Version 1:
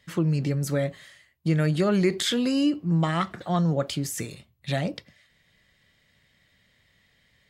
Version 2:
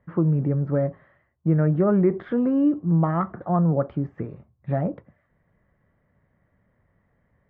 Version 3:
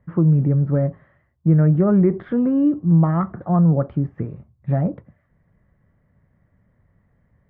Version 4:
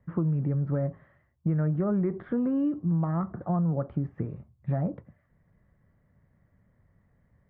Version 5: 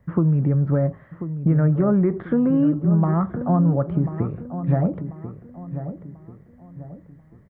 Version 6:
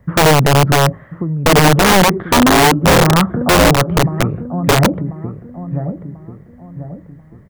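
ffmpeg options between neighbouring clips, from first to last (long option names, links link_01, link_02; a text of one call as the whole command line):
ffmpeg -i in.wav -af "lowpass=frequency=1300:width=0.5412,lowpass=frequency=1300:width=1.3066,volume=3dB" out.wav
ffmpeg -i in.wav -af "bass=frequency=250:gain=7,treble=frequency=4000:gain=-4" out.wav
ffmpeg -i in.wav -filter_complex "[0:a]acrossover=split=850|1800[link_01][link_02][link_03];[link_01]acompressor=threshold=-21dB:ratio=4[link_04];[link_02]acompressor=threshold=-35dB:ratio=4[link_05];[link_03]acompressor=threshold=-60dB:ratio=4[link_06];[link_04][link_05][link_06]amix=inputs=3:normalize=0,volume=-4dB" out.wav
ffmpeg -i in.wav -filter_complex "[0:a]asplit=2[link_01][link_02];[link_02]adelay=1040,lowpass=frequency=1500:poles=1,volume=-10.5dB,asplit=2[link_03][link_04];[link_04]adelay=1040,lowpass=frequency=1500:poles=1,volume=0.4,asplit=2[link_05][link_06];[link_06]adelay=1040,lowpass=frequency=1500:poles=1,volume=0.4,asplit=2[link_07][link_08];[link_08]adelay=1040,lowpass=frequency=1500:poles=1,volume=0.4[link_09];[link_01][link_03][link_05][link_07][link_09]amix=inputs=5:normalize=0,volume=8dB" out.wav
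ffmpeg -i in.wav -af "aeval=exprs='(mod(5.01*val(0)+1,2)-1)/5.01':channel_layout=same,volume=9dB" out.wav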